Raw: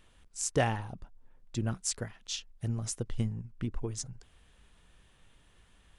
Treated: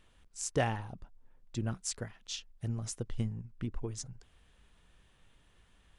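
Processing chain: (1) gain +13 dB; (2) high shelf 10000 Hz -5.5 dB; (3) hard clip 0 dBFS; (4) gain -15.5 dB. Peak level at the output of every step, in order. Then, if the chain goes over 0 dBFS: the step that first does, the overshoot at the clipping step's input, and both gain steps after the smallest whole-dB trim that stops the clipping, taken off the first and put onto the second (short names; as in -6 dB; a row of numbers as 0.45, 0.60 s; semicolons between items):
-1.5, -2.5, -2.5, -18.0 dBFS; no overload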